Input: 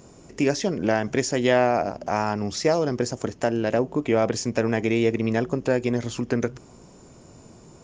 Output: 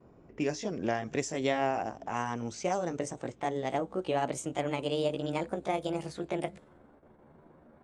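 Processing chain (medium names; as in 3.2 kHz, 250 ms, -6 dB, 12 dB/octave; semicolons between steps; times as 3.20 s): pitch bend over the whole clip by +7.5 st starting unshifted; level-controlled noise filter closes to 1.5 kHz, open at -21 dBFS; gate with hold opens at -42 dBFS; trim -8 dB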